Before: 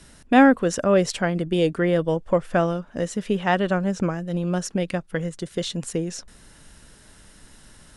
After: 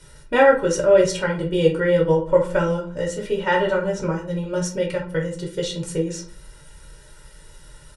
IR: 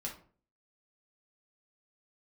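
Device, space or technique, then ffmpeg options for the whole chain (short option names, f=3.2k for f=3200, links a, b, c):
microphone above a desk: -filter_complex "[0:a]aecho=1:1:2.1:0.84[a];[1:a]atrim=start_sample=2205[b];[a][b]afir=irnorm=-1:irlink=0,asettb=1/sr,asplit=3[c][d][e];[c]atrim=end=2.334[f];[d]atrim=start=2.33:end=3.02,asetpts=PTS-STARTPTS,afade=t=in:d=0.004:c=qsin,afade=t=out:st=0.686:d=0.004:c=qsin,equalizer=f=7.7k:w=3.6:g=6.5[g];[e]atrim=start=3.016[h];[f][g]acrossfade=d=0.004:c1=hsin:c2=qsin[i];[i][h]acrossfade=d=0.004:c1=qsin:c2=hsin"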